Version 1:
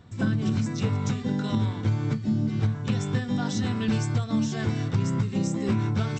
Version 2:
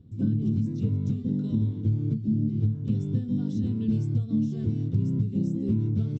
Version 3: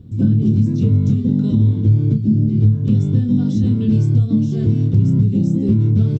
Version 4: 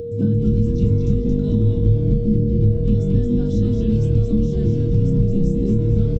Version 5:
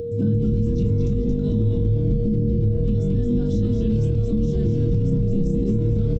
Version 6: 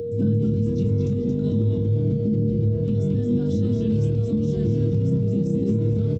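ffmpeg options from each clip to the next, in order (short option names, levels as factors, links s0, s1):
-af "firequalizer=gain_entry='entry(300,0);entry(770,-24);entry(1800,-28);entry(3000,-18);entry(9000,-23)':delay=0.05:min_phase=1"
-filter_complex "[0:a]asplit=2[s0][s1];[s1]alimiter=limit=0.0794:level=0:latency=1,volume=1.12[s2];[s0][s2]amix=inputs=2:normalize=0,asplit=2[s3][s4];[s4]adelay=29,volume=0.398[s5];[s3][s5]amix=inputs=2:normalize=0,volume=1.88"
-filter_complex "[0:a]asplit=6[s0][s1][s2][s3][s4][s5];[s1]adelay=224,afreqshift=-150,volume=0.631[s6];[s2]adelay=448,afreqshift=-300,volume=0.26[s7];[s3]adelay=672,afreqshift=-450,volume=0.106[s8];[s4]adelay=896,afreqshift=-600,volume=0.0437[s9];[s5]adelay=1120,afreqshift=-750,volume=0.0178[s10];[s0][s6][s7][s8][s9][s10]amix=inputs=6:normalize=0,acompressor=mode=upward:threshold=0.0398:ratio=2.5,aeval=exprs='val(0)+0.0794*sin(2*PI*470*n/s)':c=same,volume=0.631"
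-af "alimiter=limit=0.224:level=0:latency=1:release=29"
-af "highpass=f=88:w=0.5412,highpass=f=88:w=1.3066"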